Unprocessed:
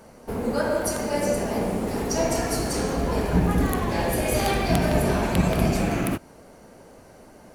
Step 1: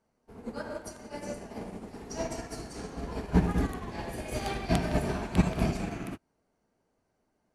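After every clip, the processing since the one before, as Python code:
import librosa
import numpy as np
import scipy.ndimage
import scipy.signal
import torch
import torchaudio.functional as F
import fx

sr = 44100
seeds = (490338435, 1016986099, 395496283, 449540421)

y = scipy.signal.sosfilt(scipy.signal.butter(2, 8900.0, 'lowpass', fs=sr, output='sos'), x)
y = fx.peak_eq(y, sr, hz=540.0, db=-6.0, octaves=0.23)
y = fx.upward_expand(y, sr, threshold_db=-34.0, expansion=2.5)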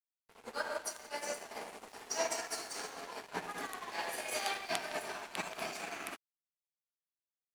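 y = fx.rider(x, sr, range_db=4, speed_s=0.5)
y = scipy.signal.sosfilt(scipy.signal.bessel(2, 1000.0, 'highpass', norm='mag', fs=sr, output='sos'), y)
y = np.sign(y) * np.maximum(np.abs(y) - 10.0 ** (-55.0 / 20.0), 0.0)
y = y * 10.0 ** (3.5 / 20.0)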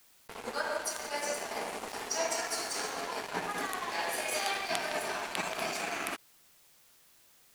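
y = fx.env_flatten(x, sr, amount_pct=50)
y = y * 10.0 ** (1.0 / 20.0)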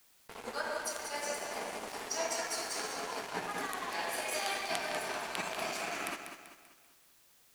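y = fx.echo_feedback(x, sr, ms=194, feedback_pct=43, wet_db=-8.5)
y = y * 10.0 ** (-3.0 / 20.0)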